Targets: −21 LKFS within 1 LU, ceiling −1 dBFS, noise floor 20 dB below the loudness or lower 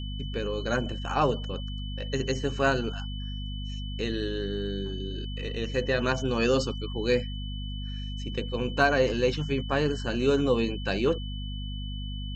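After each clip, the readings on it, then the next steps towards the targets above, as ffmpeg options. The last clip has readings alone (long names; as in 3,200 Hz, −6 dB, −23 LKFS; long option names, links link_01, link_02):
mains hum 50 Hz; hum harmonics up to 250 Hz; level of the hum −32 dBFS; interfering tone 3,000 Hz; level of the tone −42 dBFS; integrated loudness −29.0 LKFS; sample peak −9.0 dBFS; target loudness −21.0 LKFS
→ -af "bandreject=frequency=50:width_type=h:width=4,bandreject=frequency=100:width_type=h:width=4,bandreject=frequency=150:width_type=h:width=4,bandreject=frequency=200:width_type=h:width=4,bandreject=frequency=250:width_type=h:width=4"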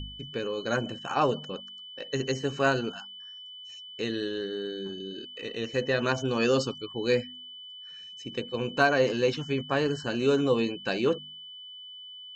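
mains hum none found; interfering tone 3,000 Hz; level of the tone −42 dBFS
→ -af "bandreject=frequency=3000:width=30"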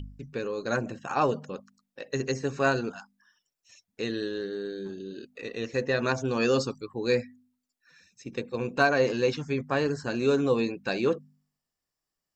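interfering tone none found; integrated loudness −28.5 LKFS; sample peak −9.5 dBFS; target loudness −21.0 LKFS
→ -af "volume=7.5dB"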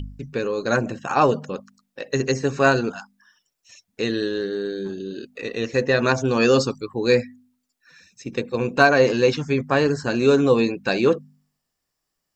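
integrated loudness −21.0 LKFS; sample peak −2.0 dBFS; background noise floor −79 dBFS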